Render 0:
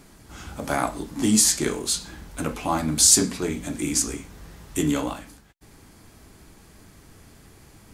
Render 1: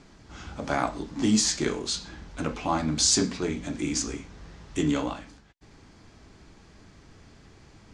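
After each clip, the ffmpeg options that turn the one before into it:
ffmpeg -i in.wav -af "lowpass=frequency=6400:width=0.5412,lowpass=frequency=6400:width=1.3066,volume=-2dB" out.wav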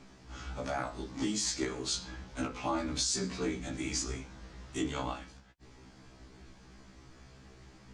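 ffmpeg -i in.wav -af "alimiter=limit=-19dB:level=0:latency=1:release=194,afftfilt=real='re*1.73*eq(mod(b,3),0)':imag='im*1.73*eq(mod(b,3),0)':win_size=2048:overlap=0.75" out.wav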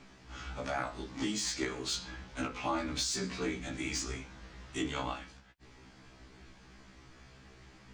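ffmpeg -i in.wav -filter_complex "[0:a]acrossover=split=3000[link_01][link_02];[link_01]crystalizer=i=5.5:c=0[link_03];[link_02]asoftclip=type=tanh:threshold=-28.5dB[link_04];[link_03][link_04]amix=inputs=2:normalize=0,volume=-2dB" out.wav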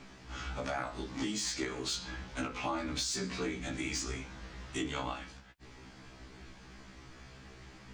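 ffmpeg -i in.wav -af "acompressor=threshold=-39dB:ratio=2,volume=3.5dB" out.wav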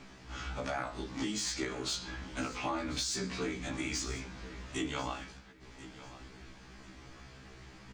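ffmpeg -i in.wav -af "aecho=1:1:1041|2082|3123:0.158|0.0444|0.0124" out.wav

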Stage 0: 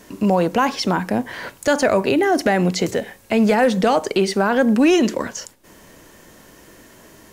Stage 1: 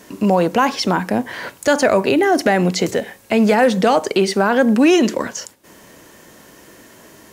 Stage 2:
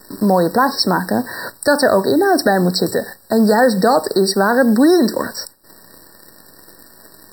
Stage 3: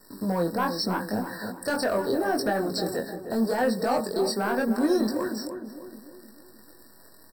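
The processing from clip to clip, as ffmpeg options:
ffmpeg -i in.wav -af "highpass=frequency=110:poles=1,volume=2.5dB" out.wav
ffmpeg -i in.wav -af "acrusher=bits=7:dc=4:mix=0:aa=0.000001,aemphasis=mode=production:type=cd,afftfilt=real='re*eq(mod(floor(b*sr/1024/1900),2),0)':imag='im*eq(mod(floor(b*sr/1024/1900),2),0)':win_size=1024:overlap=0.75,volume=1.5dB" out.wav
ffmpeg -i in.wav -filter_complex "[0:a]asoftclip=type=tanh:threshold=-6dB,flanger=delay=19:depth=5.4:speed=0.79,asplit=2[link_01][link_02];[link_02]adelay=307,lowpass=frequency=1100:poles=1,volume=-7.5dB,asplit=2[link_03][link_04];[link_04]adelay=307,lowpass=frequency=1100:poles=1,volume=0.51,asplit=2[link_05][link_06];[link_06]adelay=307,lowpass=frequency=1100:poles=1,volume=0.51,asplit=2[link_07][link_08];[link_08]adelay=307,lowpass=frequency=1100:poles=1,volume=0.51,asplit=2[link_09][link_10];[link_10]adelay=307,lowpass=frequency=1100:poles=1,volume=0.51,asplit=2[link_11][link_12];[link_12]adelay=307,lowpass=frequency=1100:poles=1,volume=0.51[link_13];[link_03][link_05][link_07][link_09][link_11][link_13]amix=inputs=6:normalize=0[link_14];[link_01][link_14]amix=inputs=2:normalize=0,volume=-8dB" out.wav

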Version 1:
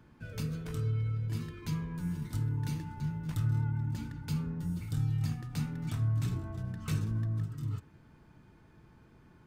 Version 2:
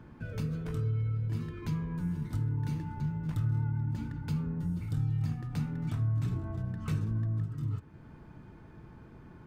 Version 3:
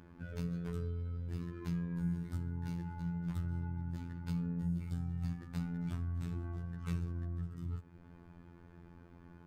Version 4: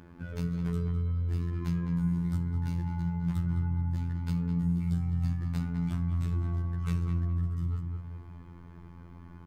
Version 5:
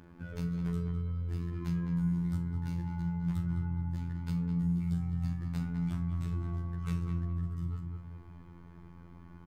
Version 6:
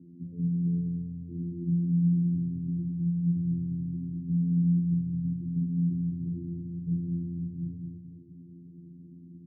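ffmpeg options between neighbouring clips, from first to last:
ffmpeg -i in.wav -af "acompressor=threshold=-49dB:ratio=1.5,highshelf=frequency=2600:gain=-10.5,volume=8dB" out.wav
ffmpeg -i in.wav -af "afftfilt=real='hypot(re,im)*cos(PI*b)':imag='0':win_size=2048:overlap=0.75,volume=-1.5dB" out.wav
ffmpeg -i in.wav -filter_complex "[0:a]asplit=2[link_01][link_02];[link_02]adelay=208,lowpass=frequency=1800:poles=1,volume=-4dB,asplit=2[link_03][link_04];[link_04]adelay=208,lowpass=frequency=1800:poles=1,volume=0.46,asplit=2[link_05][link_06];[link_06]adelay=208,lowpass=frequency=1800:poles=1,volume=0.46,asplit=2[link_07][link_08];[link_08]adelay=208,lowpass=frequency=1800:poles=1,volume=0.46,asplit=2[link_09][link_10];[link_10]adelay=208,lowpass=frequency=1800:poles=1,volume=0.46,asplit=2[link_11][link_12];[link_12]adelay=208,lowpass=frequency=1800:poles=1,volume=0.46[link_13];[link_01][link_03][link_05][link_07][link_09][link_11][link_13]amix=inputs=7:normalize=0,volume=5dB" out.wav
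ffmpeg -i in.wav -filter_complex "[0:a]asplit=2[link_01][link_02];[link_02]adelay=41,volume=-13dB[link_03];[link_01][link_03]amix=inputs=2:normalize=0,volume=-3dB" out.wav
ffmpeg -i in.wav -af "asuperpass=centerf=200:order=8:qfactor=0.89,volume=6.5dB" out.wav

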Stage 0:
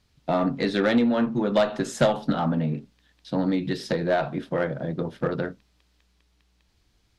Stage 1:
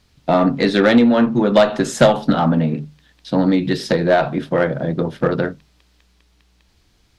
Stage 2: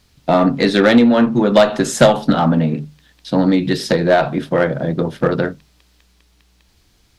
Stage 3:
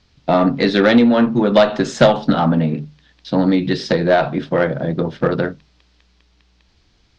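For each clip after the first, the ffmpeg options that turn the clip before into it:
ffmpeg -i in.wav -af "bandreject=frequency=50:width_type=h:width=6,bandreject=frequency=100:width_type=h:width=6,bandreject=frequency=150:width_type=h:width=6,volume=8.5dB" out.wav
ffmpeg -i in.wav -af "highshelf=frequency=8000:gain=7.5,volume=1.5dB" out.wav
ffmpeg -i in.wav -af "lowpass=frequency=5700:width=0.5412,lowpass=frequency=5700:width=1.3066,volume=-1dB" out.wav

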